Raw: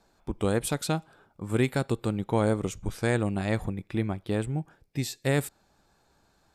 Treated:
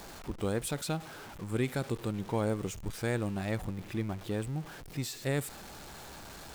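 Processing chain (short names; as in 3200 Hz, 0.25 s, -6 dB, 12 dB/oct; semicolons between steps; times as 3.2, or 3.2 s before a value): zero-crossing step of -34.5 dBFS; gain -7 dB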